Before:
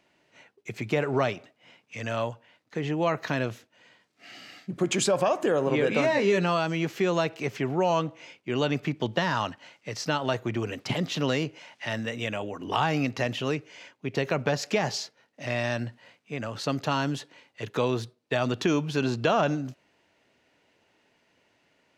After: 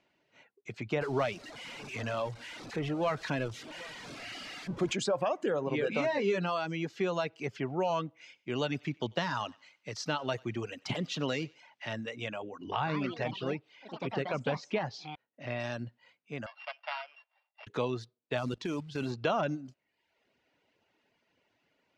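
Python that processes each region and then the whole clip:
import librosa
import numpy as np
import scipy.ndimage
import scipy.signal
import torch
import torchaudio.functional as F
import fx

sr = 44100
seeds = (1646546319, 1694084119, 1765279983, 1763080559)

y = fx.chain(x, sr, fx.zero_step(step_db=-31.5),
    fx.echo_single(ms=773, db=-20.5), at=(1.01, 4.93))
y = fx.chain(y, sr, fx.high_shelf(hz=6900.0, db=9.5),
    fx.echo_thinned(ms=94, feedback_pct=43, hz=1000.0, wet_db=-12), at=(8.21, 11.61))
y = fx.chain(y, sr, fx.echo_pitch(ms=149, semitones=4, count=3, db_per_echo=-6.0),
    fx.air_absorb(metres=150.0), at=(12.71, 15.6))
y = fx.chain(y, sr, fx.sample_sort(block=16),
    fx.cheby1_bandpass(low_hz=620.0, high_hz=4900.0, order=5),
    fx.high_shelf(hz=3200.0, db=-9.0), at=(16.46, 17.67))
y = fx.chain(y, sr, fx.low_shelf(hz=200.0, db=3.5),
    fx.level_steps(step_db=9),
    fx.quant_float(bits=2), at=(18.37, 19.12))
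y = scipy.signal.sosfilt(scipy.signal.butter(2, 5800.0, 'lowpass', fs=sr, output='sos'), y)
y = fx.notch(y, sr, hz=1800.0, q=29.0)
y = fx.dereverb_blind(y, sr, rt60_s=0.75)
y = y * librosa.db_to_amplitude(-5.5)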